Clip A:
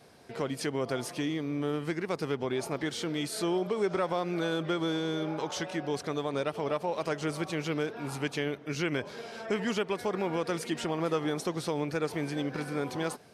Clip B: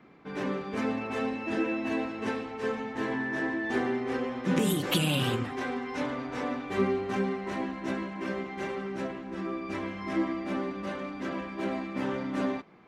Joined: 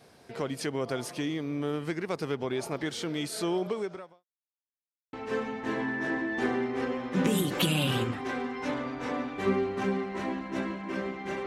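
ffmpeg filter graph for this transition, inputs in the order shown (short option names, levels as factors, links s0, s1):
-filter_complex "[0:a]apad=whole_dur=11.46,atrim=end=11.46,asplit=2[s0][s1];[s0]atrim=end=4.25,asetpts=PTS-STARTPTS,afade=t=out:st=3.7:d=0.55:c=qua[s2];[s1]atrim=start=4.25:end=5.13,asetpts=PTS-STARTPTS,volume=0[s3];[1:a]atrim=start=2.45:end=8.78,asetpts=PTS-STARTPTS,afade=t=in:d=0.004:c=hsin[s4];[s2][s3][s4]concat=n=3:v=0:a=1"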